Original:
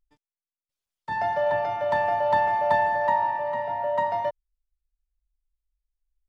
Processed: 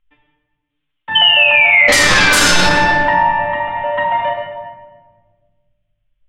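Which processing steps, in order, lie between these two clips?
FFT filter 490 Hz 0 dB, 3.2 kHz +15 dB, 4.8 kHz -21 dB; 1.88–2.56 s: sine folder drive 19 dB, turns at -5.5 dBFS; 1.15–2.46 s: painted sound fall 1.4–3.1 kHz -12 dBFS; simulated room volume 1400 m³, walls mixed, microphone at 2.1 m; loudness maximiser +4 dB; trim -1 dB

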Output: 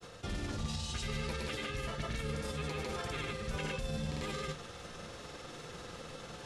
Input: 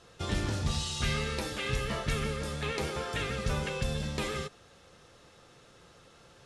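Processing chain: reverse; compression 4:1, threshold -42 dBFS, peak gain reduction 14 dB; reverse; peak limiter -40 dBFS, peak gain reduction 9 dB; granulator, pitch spread up and down by 0 st; on a send: reverberation RT60 0.45 s, pre-delay 4 ms, DRR 12 dB; on the sum: trim +11 dB

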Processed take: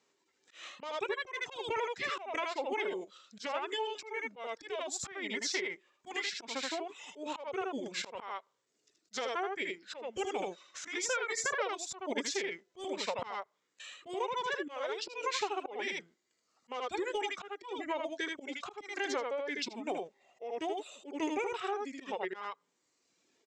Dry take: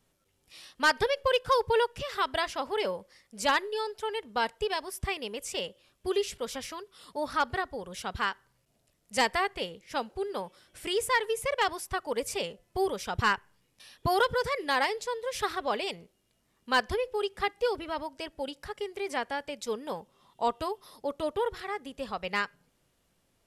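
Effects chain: high-pass 420 Hz 12 dB/octave; reverb removal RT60 1.1 s; steep low-pass 11 kHz 72 dB/octave; delay 78 ms -4.5 dB; compression 10:1, threshold -35 dBFS, peak gain reduction 16.5 dB; slow attack 173 ms; formant shift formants -6 st; level rider gain up to 5 dB

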